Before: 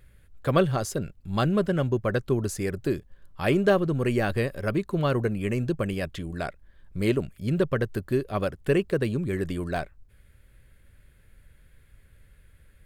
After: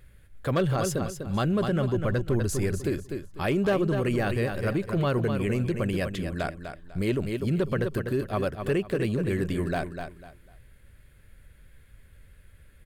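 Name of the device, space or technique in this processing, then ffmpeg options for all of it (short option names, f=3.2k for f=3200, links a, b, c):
clipper into limiter: -filter_complex "[0:a]asettb=1/sr,asplit=3[a][b][c];[a]atrim=end=1.964[d];[b]atrim=start=1.96:end=2.82,asetpts=PTS-STARTPTS,afade=t=in:d=0.004:c=qsin,afade=t=out:st=0.856:d=0.004:c=qsin,lowshelf=f=69:g=12[e];[c]atrim=start=2.816[f];[d][e]acrossfade=d=0.004:c1=hsin:c2=qsin[g];[g][f]acrossfade=d=0.004:c1=qsin:c2=hsin,aecho=1:1:248|496|744:0.355|0.0923|0.024,asoftclip=type=hard:threshold=-14.5dB,alimiter=limit=-19.5dB:level=0:latency=1:release=25,volume=1.5dB"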